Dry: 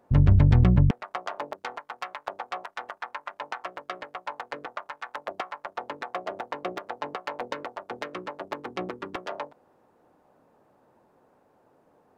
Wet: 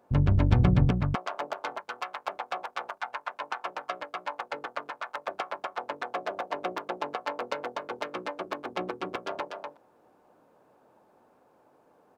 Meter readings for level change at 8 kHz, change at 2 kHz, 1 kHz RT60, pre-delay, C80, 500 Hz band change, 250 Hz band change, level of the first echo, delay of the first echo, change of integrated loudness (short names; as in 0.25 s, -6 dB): n/a, +0.5 dB, none, none, none, +1.0 dB, -2.0 dB, -4.5 dB, 0.243 s, -2.5 dB